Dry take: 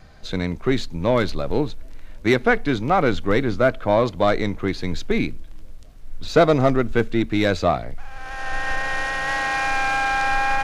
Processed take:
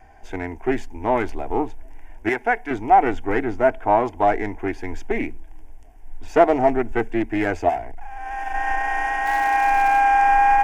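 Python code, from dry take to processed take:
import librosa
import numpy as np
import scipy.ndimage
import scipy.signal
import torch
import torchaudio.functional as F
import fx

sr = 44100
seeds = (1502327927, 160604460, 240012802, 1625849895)

y = fx.clip_hard(x, sr, threshold_db=-24.5, at=(7.68, 8.53), fade=0.02)
y = fx.peak_eq(y, sr, hz=800.0, db=10.5, octaves=1.2)
y = fx.fixed_phaser(y, sr, hz=820.0, stages=8)
y = fx.low_shelf(y, sr, hz=490.0, db=-10.0, at=(2.29, 2.71))
y = fx.dmg_crackle(y, sr, seeds[0], per_s=370.0, level_db=-26.0, at=(9.25, 9.99), fade=0.02)
y = fx.doppler_dist(y, sr, depth_ms=0.14)
y = y * 10.0 ** (-2.0 / 20.0)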